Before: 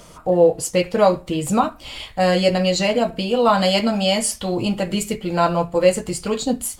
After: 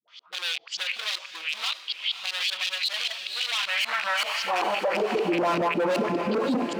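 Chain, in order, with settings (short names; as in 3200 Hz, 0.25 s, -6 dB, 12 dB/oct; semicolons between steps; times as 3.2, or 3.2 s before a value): rattling part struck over -31 dBFS, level -18 dBFS; dispersion highs, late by 80 ms, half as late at 410 Hz; LFO low-pass saw up 5.2 Hz 320–4700 Hz; in parallel at +1 dB: level quantiser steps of 20 dB; on the sum: LPF 6000 Hz 24 dB/oct; hard clip -14.5 dBFS, distortion -6 dB; dynamic EQ 1000 Hz, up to +6 dB, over -32 dBFS, Q 1.2; high-pass sweep 3500 Hz -> 260 Hz, 3.46–5.48; diffused feedback echo 0.55 s, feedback 41%, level -13 dB; limiter -17.5 dBFS, peak gain reduction 17 dB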